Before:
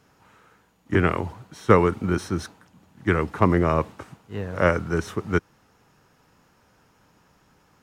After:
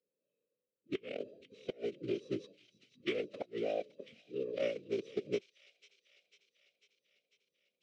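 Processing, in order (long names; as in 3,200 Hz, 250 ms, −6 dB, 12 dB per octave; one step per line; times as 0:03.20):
adaptive Wiener filter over 41 samples
Chebyshev band-stop filter 580–3,100 Hz, order 2
noise reduction from a noise print of the clip's start 20 dB
Bessel high-pass filter 430 Hz, order 4
tilt shelving filter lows −7.5 dB, about 730 Hz
downward compressor 12 to 1, threshold −37 dBFS, peak gain reduction 18.5 dB
gate with flip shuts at −26 dBFS, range −27 dB
phase-vocoder pitch shift with formants kept −7 semitones
high-frequency loss of the air 140 metres
delay with a high-pass on its return 497 ms, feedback 64%, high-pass 2,900 Hz, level −11 dB
level +7.5 dB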